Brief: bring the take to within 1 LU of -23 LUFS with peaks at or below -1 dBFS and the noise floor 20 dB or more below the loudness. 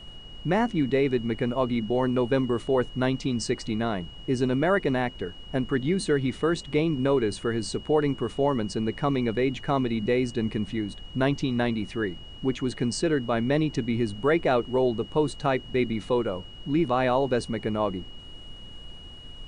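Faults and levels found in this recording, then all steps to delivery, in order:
steady tone 2900 Hz; tone level -45 dBFS; noise floor -44 dBFS; noise floor target -47 dBFS; loudness -26.5 LUFS; peak -10.5 dBFS; loudness target -23.0 LUFS
-> notch 2900 Hz, Q 30; noise print and reduce 6 dB; gain +3.5 dB

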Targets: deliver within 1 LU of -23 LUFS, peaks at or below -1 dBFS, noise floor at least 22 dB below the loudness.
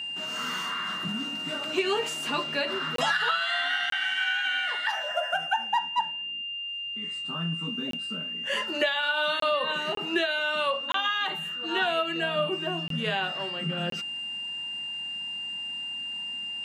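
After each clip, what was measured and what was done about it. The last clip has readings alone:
dropouts 8; longest dropout 23 ms; steady tone 2800 Hz; tone level -32 dBFS; loudness -28.0 LUFS; peak -13.0 dBFS; loudness target -23.0 LUFS
-> interpolate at 2.96/3.9/7.91/9.4/9.95/10.92/12.88/13.9, 23 ms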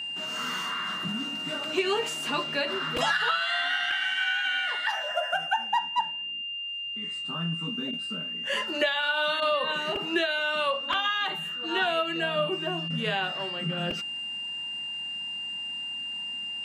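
dropouts 0; steady tone 2800 Hz; tone level -32 dBFS
-> notch 2800 Hz, Q 30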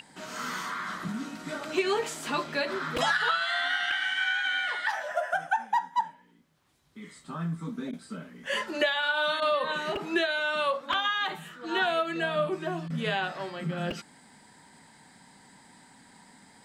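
steady tone none; loudness -29.0 LUFS; peak -14.0 dBFS; loudness target -23.0 LUFS
-> gain +6 dB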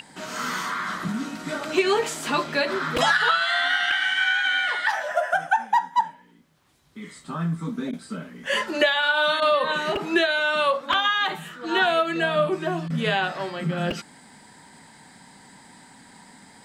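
loudness -23.0 LUFS; peak -8.0 dBFS; noise floor -51 dBFS

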